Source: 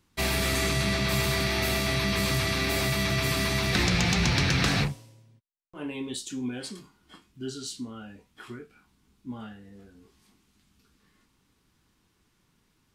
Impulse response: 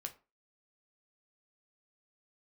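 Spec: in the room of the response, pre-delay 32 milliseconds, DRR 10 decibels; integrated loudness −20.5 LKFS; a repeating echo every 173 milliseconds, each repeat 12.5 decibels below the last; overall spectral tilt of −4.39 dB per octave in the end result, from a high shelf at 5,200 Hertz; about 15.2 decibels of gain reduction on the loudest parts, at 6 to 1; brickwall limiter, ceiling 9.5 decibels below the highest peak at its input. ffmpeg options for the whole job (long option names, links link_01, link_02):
-filter_complex "[0:a]highshelf=frequency=5200:gain=-5,acompressor=threshold=-38dB:ratio=6,alimiter=level_in=12dB:limit=-24dB:level=0:latency=1,volume=-12dB,aecho=1:1:173|346|519:0.237|0.0569|0.0137,asplit=2[link_01][link_02];[1:a]atrim=start_sample=2205,adelay=32[link_03];[link_02][link_03]afir=irnorm=-1:irlink=0,volume=-7dB[link_04];[link_01][link_04]amix=inputs=2:normalize=0,volume=24dB"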